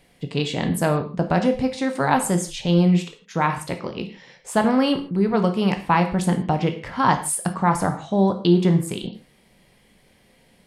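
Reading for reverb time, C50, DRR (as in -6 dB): no single decay rate, 10.5 dB, 6.0 dB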